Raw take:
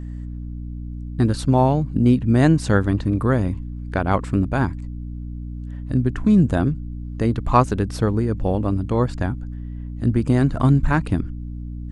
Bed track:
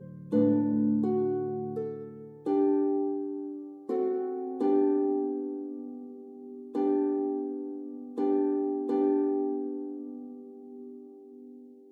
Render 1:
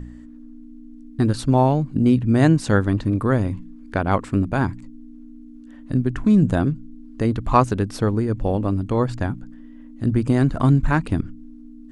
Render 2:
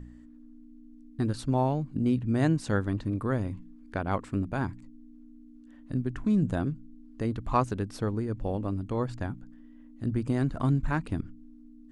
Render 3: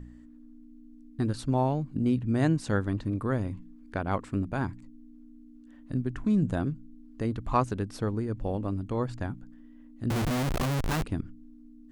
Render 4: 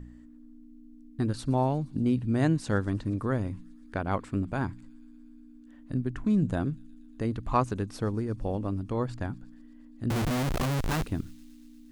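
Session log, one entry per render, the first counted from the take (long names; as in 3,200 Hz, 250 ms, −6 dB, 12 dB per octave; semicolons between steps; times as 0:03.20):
hum removal 60 Hz, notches 3
level −9.5 dB
0:10.10–0:11.04: comparator with hysteresis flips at −38 dBFS
delay with a high-pass on its return 118 ms, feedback 80%, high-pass 3,800 Hz, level −20.5 dB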